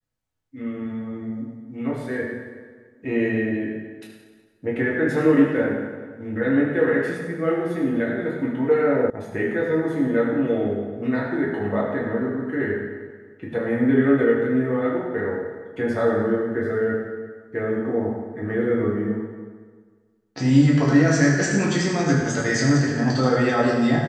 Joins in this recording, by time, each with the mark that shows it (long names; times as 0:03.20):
0:09.10: cut off before it has died away